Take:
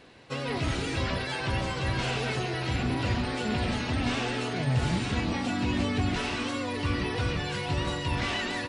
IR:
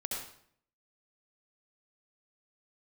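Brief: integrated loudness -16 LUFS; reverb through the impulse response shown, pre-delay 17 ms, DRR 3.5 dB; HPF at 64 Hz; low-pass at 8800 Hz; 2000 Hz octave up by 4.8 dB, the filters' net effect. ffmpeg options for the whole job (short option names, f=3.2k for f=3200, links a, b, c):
-filter_complex "[0:a]highpass=64,lowpass=8.8k,equalizer=f=2k:t=o:g=6,asplit=2[a][b];[1:a]atrim=start_sample=2205,adelay=17[c];[b][c]afir=irnorm=-1:irlink=0,volume=-6dB[d];[a][d]amix=inputs=2:normalize=0,volume=10.5dB"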